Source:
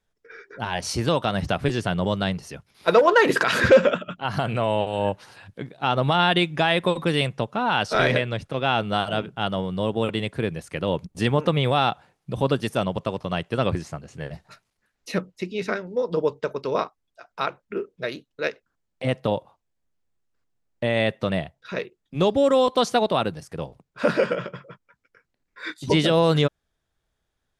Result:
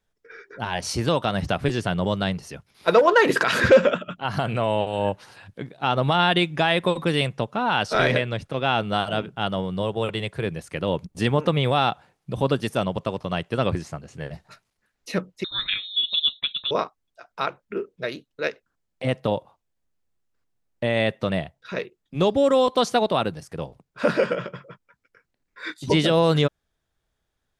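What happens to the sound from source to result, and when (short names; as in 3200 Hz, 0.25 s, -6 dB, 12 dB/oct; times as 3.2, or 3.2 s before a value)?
9.82–10.46 bell 260 Hz -14.5 dB 0.37 oct
15.44–16.71 inverted band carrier 3900 Hz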